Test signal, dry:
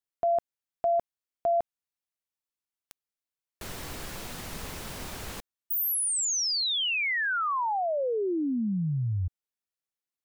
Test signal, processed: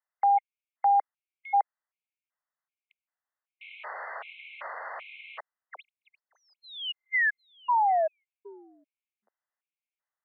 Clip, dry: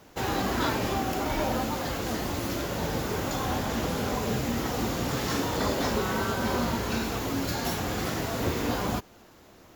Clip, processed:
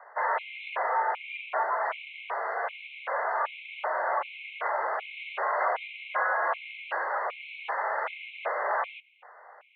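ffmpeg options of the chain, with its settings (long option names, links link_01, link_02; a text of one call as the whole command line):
ffmpeg -i in.wav -filter_complex "[0:a]asplit=2[link_01][link_02];[link_02]highpass=frequency=720:poles=1,volume=16dB,asoftclip=type=tanh:threshold=-14dB[link_03];[link_01][link_03]amix=inputs=2:normalize=0,lowpass=frequency=1800:poles=1,volume=-6dB,highpass=frequency=460:width_type=q:width=0.5412,highpass=frequency=460:width_type=q:width=1.307,lowpass=frequency=2600:width_type=q:width=0.5176,lowpass=frequency=2600:width_type=q:width=0.7071,lowpass=frequency=2600:width_type=q:width=1.932,afreqshift=120,afftfilt=real='re*gt(sin(2*PI*1.3*pts/sr)*(1-2*mod(floor(b*sr/1024/2100),2)),0)':imag='im*gt(sin(2*PI*1.3*pts/sr)*(1-2*mod(floor(b*sr/1024/2100),2)),0)':win_size=1024:overlap=0.75" out.wav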